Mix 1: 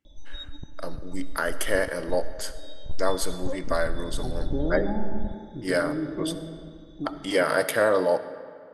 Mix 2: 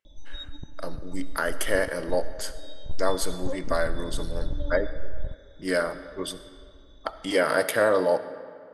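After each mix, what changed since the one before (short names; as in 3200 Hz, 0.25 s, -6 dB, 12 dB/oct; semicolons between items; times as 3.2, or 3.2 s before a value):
second voice: muted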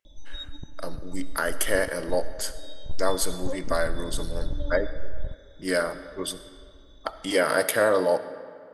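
master: add high shelf 6300 Hz +6.5 dB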